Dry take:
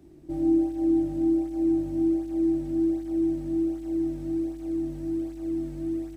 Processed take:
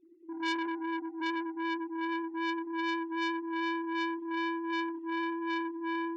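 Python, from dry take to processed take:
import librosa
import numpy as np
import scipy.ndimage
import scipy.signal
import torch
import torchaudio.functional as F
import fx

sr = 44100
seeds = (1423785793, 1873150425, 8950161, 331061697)

p1 = fx.sine_speech(x, sr)
p2 = fx.highpass(p1, sr, hz=350.0, slope=12, at=(0.67, 1.2), fade=0.02)
p3 = fx.rider(p2, sr, range_db=3, speed_s=2.0)
p4 = p3 + fx.echo_feedback(p3, sr, ms=90, feedback_pct=33, wet_db=-3, dry=0)
p5 = fx.transformer_sat(p4, sr, knee_hz=2200.0)
y = p5 * librosa.db_to_amplitude(-2.0)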